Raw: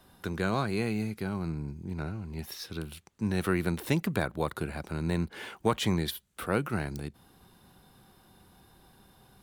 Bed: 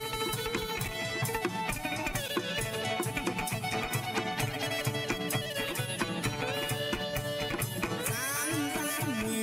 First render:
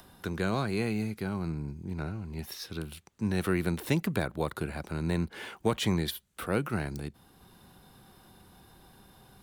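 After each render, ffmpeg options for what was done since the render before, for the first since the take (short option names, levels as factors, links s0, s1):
-filter_complex "[0:a]acrossover=split=730|1700[s0][s1][s2];[s1]alimiter=level_in=2.11:limit=0.0631:level=0:latency=1,volume=0.473[s3];[s0][s3][s2]amix=inputs=3:normalize=0,acompressor=mode=upward:threshold=0.00316:ratio=2.5"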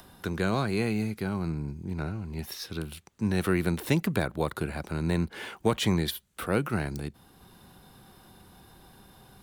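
-af "volume=1.33"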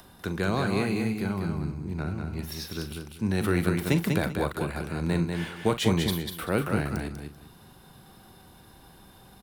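-filter_complex "[0:a]asplit=2[s0][s1];[s1]adelay=41,volume=0.251[s2];[s0][s2]amix=inputs=2:normalize=0,asplit=2[s3][s4];[s4]aecho=0:1:194|388|582:0.562|0.118|0.0248[s5];[s3][s5]amix=inputs=2:normalize=0"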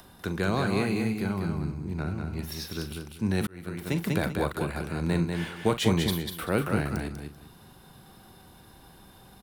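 -filter_complex "[0:a]asplit=2[s0][s1];[s0]atrim=end=3.47,asetpts=PTS-STARTPTS,afade=t=out:st=3.466:d=0.004:c=hsin[s2];[s1]atrim=start=3.47,asetpts=PTS-STARTPTS,afade=t=in:d=0.8[s3];[s2][s3]concat=n=2:v=0:a=1"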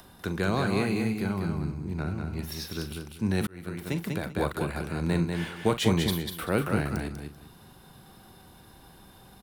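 -filter_complex "[0:a]asplit=2[s0][s1];[s0]atrim=end=4.36,asetpts=PTS-STARTPTS,afade=t=out:st=3.71:d=0.65:silence=0.398107[s2];[s1]atrim=start=4.36,asetpts=PTS-STARTPTS,afade=t=in:d=0.004:c=hsin:silence=0.398107[s3];[s2][s3]concat=n=2:v=0:a=1"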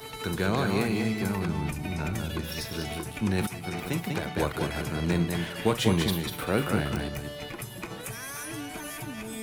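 -filter_complex "[1:a]volume=0.531[s0];[0:a][s0]amix=inputs=2:normalize=0"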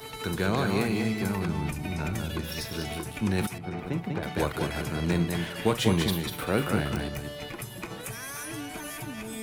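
-filter_complex "[0:a]asettb=1/sr,asplit=3[s0][s1][s2];[s0]atrim=end=3.584[s3];[s1]atrim=start=3.58:end=4.23,asetpts=PTS-STARTPTS,afade=t=in:d=0.004:c=qsin,afade=t=out:st=0.646:d=0.004:c=qsin,lowpass=f=1200:p=1[s4];[s2]atrim=start=4.226[s5];[s3][s4]acrossfade=d=0.004:c1=hsin:c2=qsin[s6];[s6][s5]acrossfade=d=0.004:c1=qsin:c2=hsin"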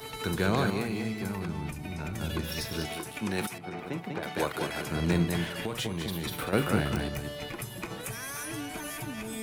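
-filter_complex "[0:a]asettb=1/sr,asplit=3[s0][s1][s2];[s0]atrim=end=2.864[s3];[s1]atrim=start=2.86:end=4.91,asetpts=PTS-STARTPTS,afade=t=in:d=0.004:c=qsin,afade=t=out:st=2.046:d=0.004:c=qsin,highpass=f=320:p=1[s4];[s2]atrim=start=4.906[s5];[s3][s4]acrossfade=d=0.004:c1=hsin:c2=qsin[s6];[s6][s5]acrossfade=d=0.004:c1=qsin:c2=hsin,asettb=1/sr,asplit=3[s7][s8][s9];[s7]atrim=end=5.594[s10];[s8]atrim=start=5.59:end=6.53,asetpts=PTS-STARTPTS,afade=t=in:d=0.004:c=qsin,afade=t=out:st=0.936:d=0.004:c=qsin,acompressor=threshold=0.0398:ratio=12:attack=3.2:release=140:knee=1:detection=peak[s11];[s9]atrim=start=6.526[s12];[s10][s11]acrossfade=d=0.004:c1=hsin:c2=qsin[s13];[s13][s12]acrossfade=d=0.004:c1=qsin:c2=hsin,asplit=3[s14][s15][s16];[s14]atrim=end=0.702[s17];[s15]atrim=start=0.698:end=2.212,asetpts=PTS-STARTPTS,volume=0.562[s18];[s16]atrim=start=2.208[s19];[s17][s18]acrossfade=d=0.004:c1=hsin:c2=hsin[s20];[s20][s19]acrossfade=d=0.004:c1=hsin:c2=hsin"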